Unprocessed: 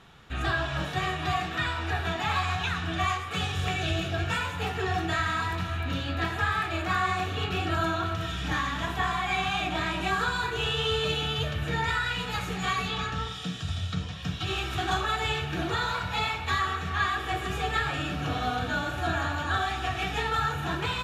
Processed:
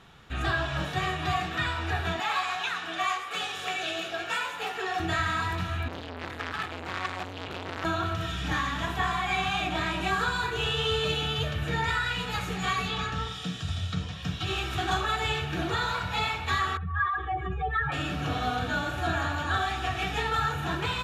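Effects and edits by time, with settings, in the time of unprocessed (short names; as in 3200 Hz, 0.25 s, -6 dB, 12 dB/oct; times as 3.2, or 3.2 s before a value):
2.2–5 HPF 430 Hz
5.88–7.85 core saturation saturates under 2400 Hz
16.77–17.92 spectral contrast raised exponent 2.2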